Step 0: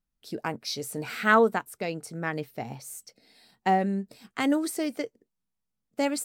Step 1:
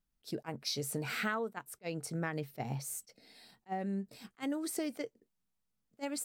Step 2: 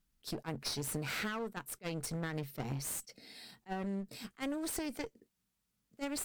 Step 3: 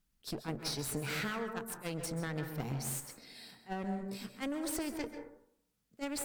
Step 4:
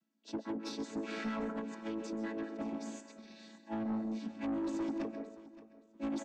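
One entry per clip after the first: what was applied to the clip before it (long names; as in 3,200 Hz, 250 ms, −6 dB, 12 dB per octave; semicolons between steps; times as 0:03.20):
dynamic equaliser 140 Hz, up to +8 dB, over −57 dBFS, Q 7.7; downward compressor 12 to 1, threshold −32 dBFS, peak gain reduction 17.5 dB; level that may rise only so fast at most 530 dB per second
parametric band 680 Hz −4.5 dB 1.4 octaves; downward compressor 4 to 1, threshold −39 dBFS, peak gain reduction 7.5 dB; asymmetric clip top −49 dBFS; level +6.5 dB
dense smooth reverb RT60 0.71 s, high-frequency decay 0.3×, pre-delay 120 ms, DRR 6.5 dB
channel vocoder with a chord as carrier major triad, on A3; soft clipping −35.5 dBFS, distortion −12 dB; repeating echo 572 ms, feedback 22%, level −17 dB; level +4.5 dB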